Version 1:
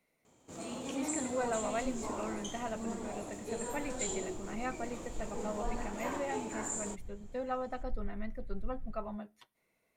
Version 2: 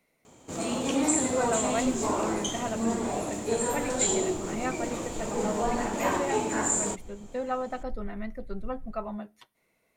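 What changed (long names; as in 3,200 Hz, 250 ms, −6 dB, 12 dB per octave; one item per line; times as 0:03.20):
speech +5.5 dB
first sound +11.5 dB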